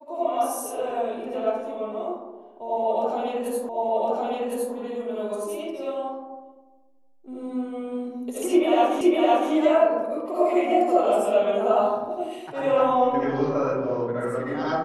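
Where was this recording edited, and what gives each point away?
3.69 s: repeat of the last 1.06 s
9.01 s: repeat of the last 0.51 s

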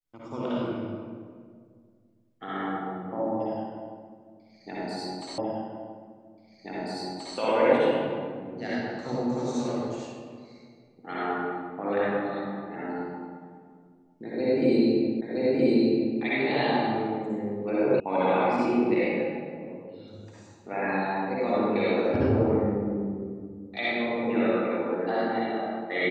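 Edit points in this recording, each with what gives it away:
5.38 s: repeat of the last 1.98 s
15.21 s: repeat of the last 0.97 s
18.00 s: sound stops dead

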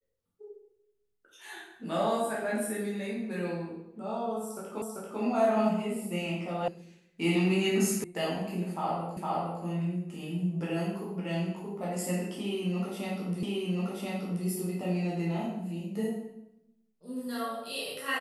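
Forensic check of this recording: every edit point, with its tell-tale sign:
4.82 s: repeat of the last 0.39 s
6.68 s: sound stops dead
8.04 s: sound stops dead
9.17 s: repeat of the last 0.46 s
13.43 s: repeat of the last 1.03 s

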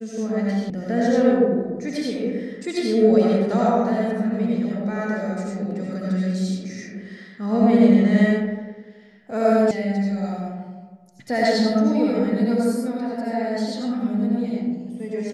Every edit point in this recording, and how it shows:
0.70 s: sound stops dead
9.71 s: sound stops dead

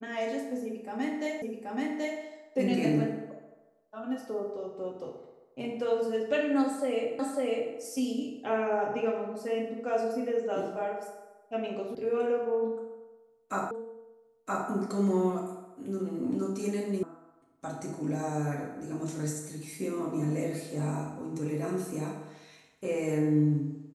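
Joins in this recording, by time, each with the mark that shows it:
1.42 s: repeat of the last 0.78 s
7.19 s: repeat of the last 0.55 s
11.95 s: sound stops dead
13.71 s: repeat of the last 0.97 s
17.03 s: sound stops dead

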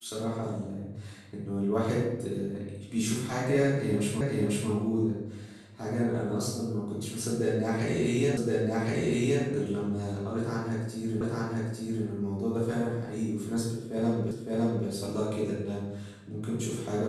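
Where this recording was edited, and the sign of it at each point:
4.21 s: repeat of the last 0.49 s
8.37 s: repeat of the last 1.07 s
11.21 s: repeat of the last 0.85 s
14.31 s: repeat of the last 0.56 s

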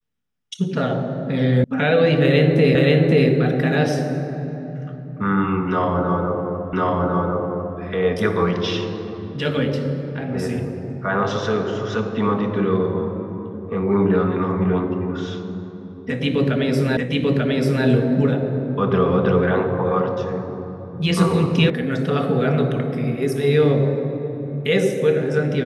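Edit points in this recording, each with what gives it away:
1.64 s: sound stops dead
2.75 s: repeat of the last 0.53 s
6.73 s: repeat of the last 1.05 s
16.97 s: repeat of the last 0.89 s
21.70 s: sound stops dead

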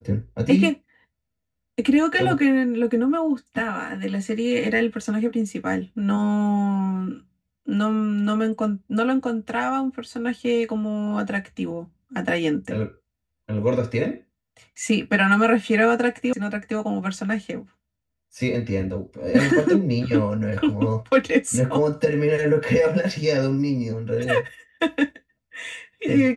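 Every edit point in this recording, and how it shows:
16.33 s: sound stops dead

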